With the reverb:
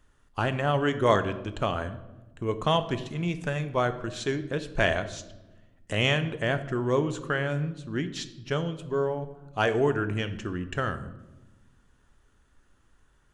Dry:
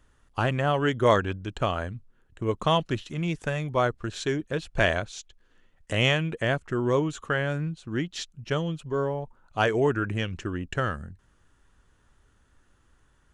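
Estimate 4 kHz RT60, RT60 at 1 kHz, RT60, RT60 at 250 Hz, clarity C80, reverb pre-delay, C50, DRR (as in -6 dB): 0.70 s, 0.95 s, 1.1 s, 1.9 s, 15.5 dB, 3 ms, 13.0 dB, 10.0 dB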